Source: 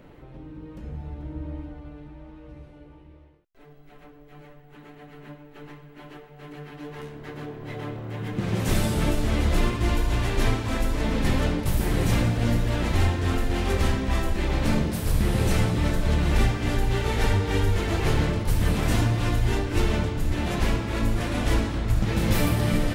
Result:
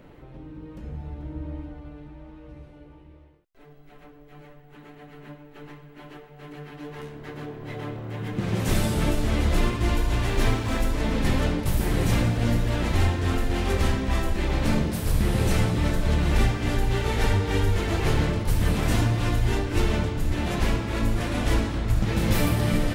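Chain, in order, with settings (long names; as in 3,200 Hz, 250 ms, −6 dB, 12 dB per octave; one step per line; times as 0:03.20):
0:10.28–0:10.91: mu-law and A-law mismatch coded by mu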